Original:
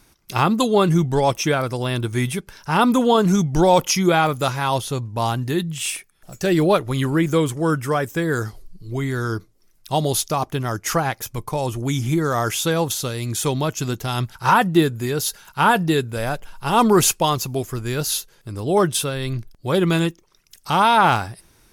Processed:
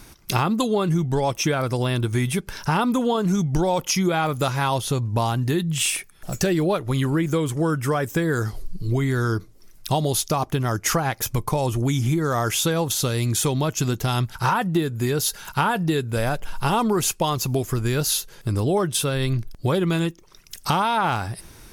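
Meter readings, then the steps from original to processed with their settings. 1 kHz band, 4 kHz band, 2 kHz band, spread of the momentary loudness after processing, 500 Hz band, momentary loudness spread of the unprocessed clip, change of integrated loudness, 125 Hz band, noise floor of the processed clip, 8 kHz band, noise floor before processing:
−4.5 dB, −2.0 dB, −3.5 dB, 5 LU, −3.5 dB, 10 LU, −2.5 dB, +0.5 dB, −48 dBFS, −0.5 dB, −57 dBFS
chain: low-shelf EQ 200 Hz +3 dB
downward compressor 6 to 1, threshold −28 dBFS, peak gain reduction 17.5 dB
level +8.5 dB

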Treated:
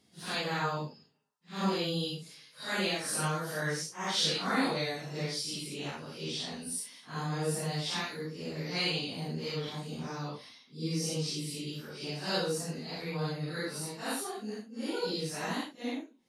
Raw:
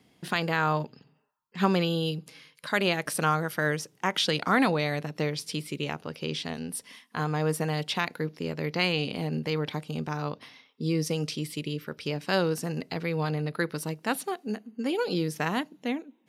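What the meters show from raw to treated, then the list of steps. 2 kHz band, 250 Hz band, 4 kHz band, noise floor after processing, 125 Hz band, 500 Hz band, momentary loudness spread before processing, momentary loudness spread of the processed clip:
−6.5 dB, −6.5 dB, −1.0 dB, −61 dBFS, −6.0 dB, −6.5 dB, 9 LU, 9 LU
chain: random phases in long frames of 200 ms
flat-topped bell 6,100 Hz +8.5 dB
level −6.5 dB

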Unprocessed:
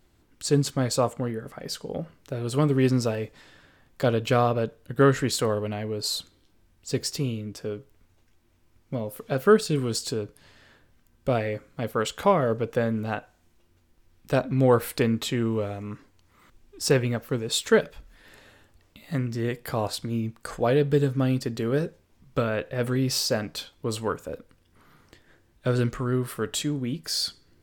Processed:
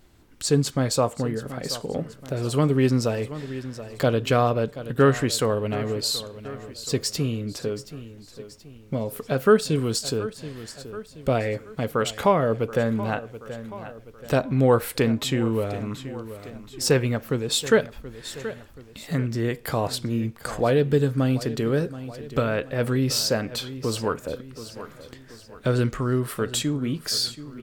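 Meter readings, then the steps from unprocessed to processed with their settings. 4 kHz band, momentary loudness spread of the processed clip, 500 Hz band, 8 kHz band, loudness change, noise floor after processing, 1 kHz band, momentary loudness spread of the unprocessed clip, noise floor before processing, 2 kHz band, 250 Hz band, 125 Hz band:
+3.0 dB, 17 LU, +1.5 dB, +3.0 dB, +1.5 dB, −48 dBFS, +1.5 dB, 13 LU, −63 dBFS, +2.0 dB, +2.0 dB, +2.0 dB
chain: repeating echo 728 ms, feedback 42%, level −17 dB
in parallel at +0.5 dB: downward compressor, threshold −35 dBFS, peak gain reduction 21 dB

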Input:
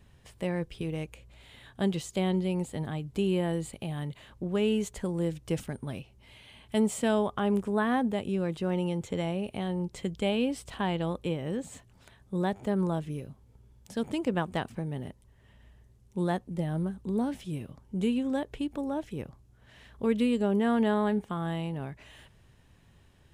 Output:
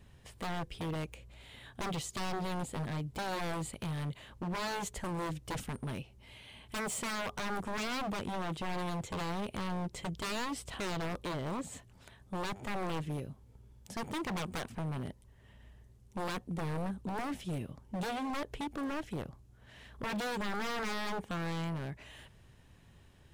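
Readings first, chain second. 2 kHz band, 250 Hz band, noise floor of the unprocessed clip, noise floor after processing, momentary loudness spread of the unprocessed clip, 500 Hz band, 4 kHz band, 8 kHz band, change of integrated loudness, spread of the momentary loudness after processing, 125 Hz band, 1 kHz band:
−0.5 dB, −10.0 dB, −60 dBFS, −60 dBFS, 12 LU, −10.0 dB, −1.0 dB, +1.0 dB, −7.0 dB, 12 LU, −5.5 dB, −2.0 dB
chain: wave folding −31 dBFS

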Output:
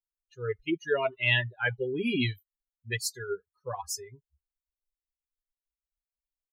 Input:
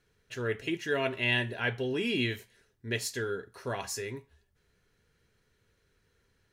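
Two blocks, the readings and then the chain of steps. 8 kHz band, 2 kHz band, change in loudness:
+2.5 dB, +1.5 dB, +1.5 dB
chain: spectral dynamics exaggerated over time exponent 3
level +7 dB

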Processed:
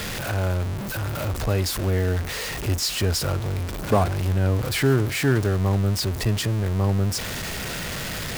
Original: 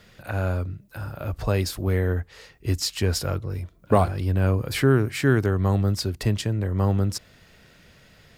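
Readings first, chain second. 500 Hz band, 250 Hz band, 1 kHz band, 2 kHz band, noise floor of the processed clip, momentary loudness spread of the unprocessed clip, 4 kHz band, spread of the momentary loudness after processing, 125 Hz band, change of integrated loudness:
0.0 dB, 0.0 dB, +0.5 dB, +3.0 dB, −30 dBFS, 12 LU, +4.5 dB, 8 LU, +1.0 dB, +0.5 dB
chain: converter with a step at zero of −22 dBFS
level −2.5 dB

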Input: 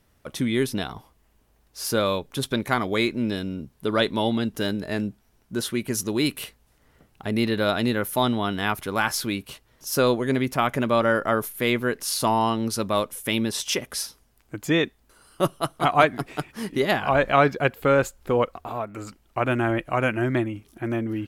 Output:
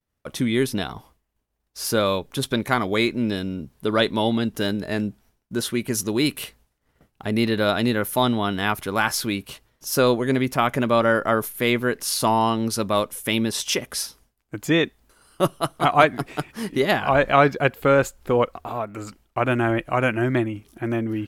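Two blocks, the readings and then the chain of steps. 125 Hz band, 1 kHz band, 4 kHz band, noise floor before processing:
+2.0 dB, +2.0 dB, +2.0 dB, −63 dBFS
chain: downward expander −51 dBFS
level +2 dB

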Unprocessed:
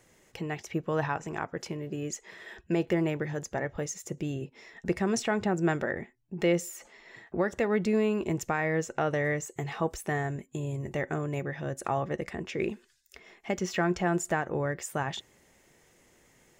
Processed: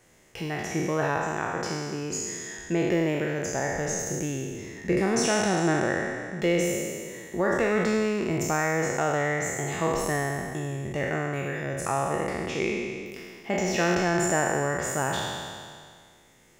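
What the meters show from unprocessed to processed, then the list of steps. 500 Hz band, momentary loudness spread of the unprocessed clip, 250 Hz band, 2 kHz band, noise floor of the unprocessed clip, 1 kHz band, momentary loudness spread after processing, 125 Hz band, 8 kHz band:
+4.0 dB, 11 LU, +3.0 dB, +5.5 dB, −64 dBFS, +5.0 dB, 10 LU, +2.5 dB, +9.0 dB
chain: peak hold with a decay on every bin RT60 2.02 s

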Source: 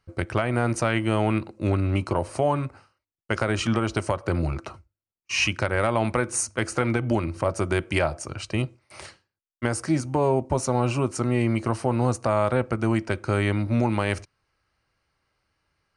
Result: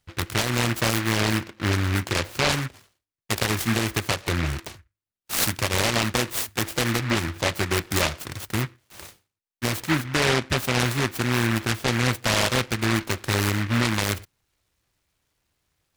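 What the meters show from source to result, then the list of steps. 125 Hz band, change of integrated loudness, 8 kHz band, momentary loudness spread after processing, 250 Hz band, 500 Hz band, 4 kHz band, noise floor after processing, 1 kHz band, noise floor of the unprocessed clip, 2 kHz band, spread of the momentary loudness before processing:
0.0 dB, +1.0 dB, +5.0 dB, 7 LU, −1.0 dB, −3.5 dB, +9.5 dB, below −85 dBFS, −0.5 dB, below −85 dBFS, +4.5 dB, 6 LU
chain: short delay modulated by noise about 1,600 Hz, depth 0.34 ms

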